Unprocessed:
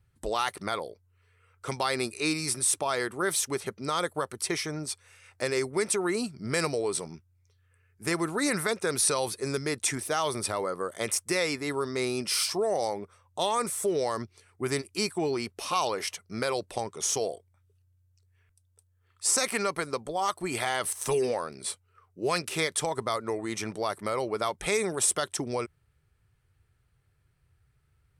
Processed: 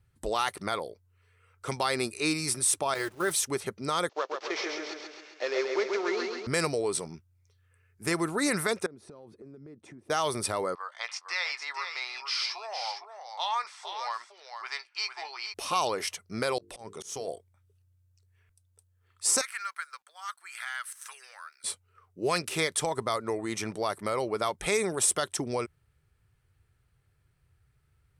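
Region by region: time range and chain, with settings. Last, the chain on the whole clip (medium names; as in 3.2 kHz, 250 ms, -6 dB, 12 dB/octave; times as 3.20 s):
2.94–3.34 s: send-on-delta sampling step -40 dBFS + gate -34 dBFS, range -9 dB + comb of notches 240 Hz
4.09–6.47 s: CVSD coder 32 kbps + high-pass 370 Hz 24 dB/octave + feedback delay 134 ms, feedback 54%, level -4 dB
8.86–10.10 s: band-pass filter 230 Hz, Q 1.2 + compression 12:1, threshold -44 dBFS
10.75–15.54 s: elliptic band-pass 850–5000 Hz, stop band 80 dB + doubling 17 ms -12 dB + delay 457 ms -7.5 dB
16.58–17.28 s: compression, threshold -31 dBFS + hum notches 50/100/150/200/250/300/350/400/450 Hz + slow attack 138 ms
19.41–21.64 s: ladder high-pass 1.3 kHz, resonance 60% + companded quantiser 8-bit
whole clip: none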